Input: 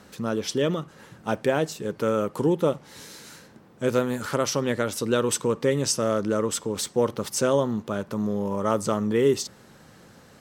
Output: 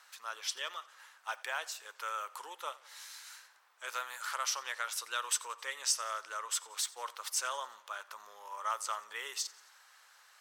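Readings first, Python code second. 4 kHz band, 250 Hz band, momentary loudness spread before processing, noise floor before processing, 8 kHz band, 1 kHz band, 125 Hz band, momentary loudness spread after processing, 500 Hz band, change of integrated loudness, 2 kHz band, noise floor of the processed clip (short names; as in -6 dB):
-4.5 dB, under -40 dB, 9 LU, -52 dBFS, -5.0 dB, -6.5 dB, under -40 dB, 14 LU, -26.5 dB, -12.0 dB, -4.5 dB, -63 dBFS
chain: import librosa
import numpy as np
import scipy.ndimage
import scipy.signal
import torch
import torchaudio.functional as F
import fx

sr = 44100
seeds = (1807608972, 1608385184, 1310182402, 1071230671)

p1 = scipy.signal.sosfilt(scipy.signal.butter(4, 980.0, 'highpass', fs=sr, output='sos'), x)
p2 = np.clip(p1, -10.0 ** (-22.5 / 20.0), 10.0 ** (-22.5 / 20.0))
p3 = p1 + F.gain(torch.from_numpy(p2), -12.0).numpy()
p4 = fx.echo_feedback(p3, sr, ms=89, feedback_pct=56, wet_db=-21.5)
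y = F.gain(torch.from_numpy(p4), -6.5).numpy()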